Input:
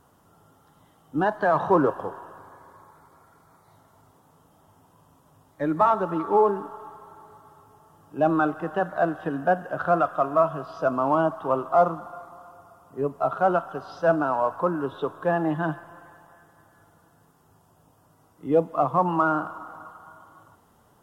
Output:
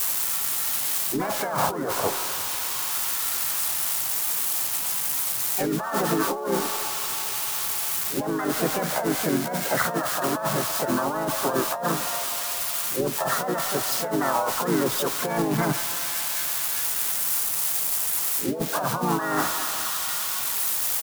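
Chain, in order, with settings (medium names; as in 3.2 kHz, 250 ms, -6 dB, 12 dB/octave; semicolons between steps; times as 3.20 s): zero-crossing glitches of -21.5 dBFS; compressor with a negative ratio -27 dBFS, ratio -1; harmony voices -3 st -7 dB, +5 st -4 dB; trim +1.5 dB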